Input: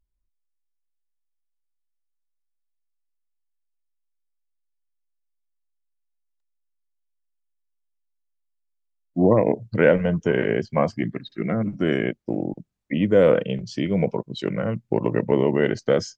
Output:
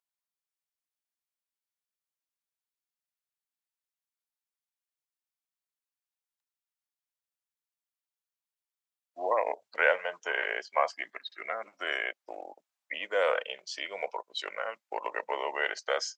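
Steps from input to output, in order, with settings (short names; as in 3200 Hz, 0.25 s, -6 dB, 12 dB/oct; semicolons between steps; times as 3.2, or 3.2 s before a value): HPF 720 Hz 24 dB/oct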